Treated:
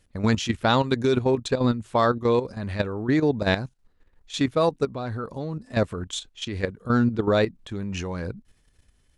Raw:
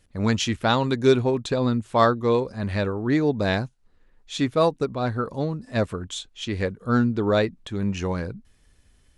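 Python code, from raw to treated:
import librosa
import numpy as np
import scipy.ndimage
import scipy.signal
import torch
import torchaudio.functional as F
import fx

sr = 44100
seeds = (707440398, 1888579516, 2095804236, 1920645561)

y = fx.level_steps(x, sr, step_db=11)
y = F.gain(torch.from_numpy(y), 3.0).numpy()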